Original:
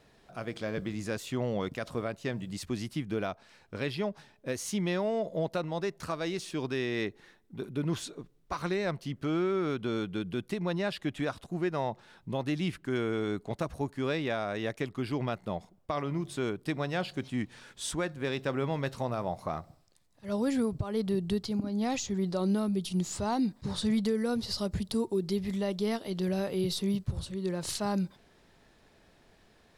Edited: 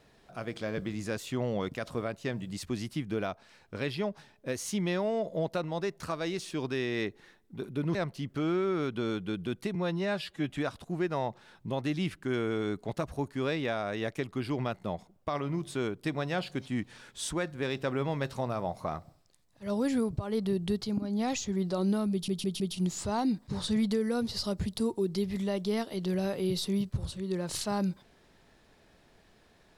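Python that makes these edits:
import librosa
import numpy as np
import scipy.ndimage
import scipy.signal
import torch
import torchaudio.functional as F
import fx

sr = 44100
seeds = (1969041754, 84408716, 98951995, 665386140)

y = fx.edit(x, sr, fx.cut(start_s=7.95, length_s=0.87),
    fx.stretch_span(start_s=10.62, length_s=0.5, factor=1.5),
    fx.stutter(start_s=22.74, slice_s=0.16, count=4), tone=tone)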